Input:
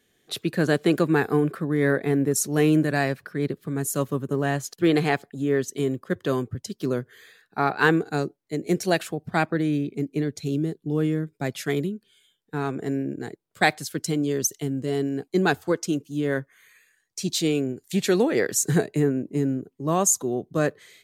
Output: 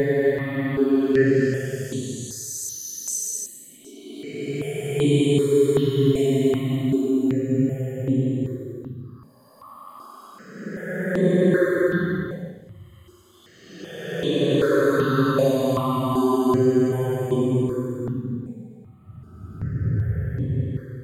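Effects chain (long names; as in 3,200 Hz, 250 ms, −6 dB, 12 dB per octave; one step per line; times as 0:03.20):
in parallel at +2 dB: brickwall limiter −15.5 dBFS, peak gain reduction 11 dB
on the sum: extreme stretch with random phases 20×, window 0.10 s, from 0:05.54
step-sequenced phaser 2.6 Hz 340–5,100 Hz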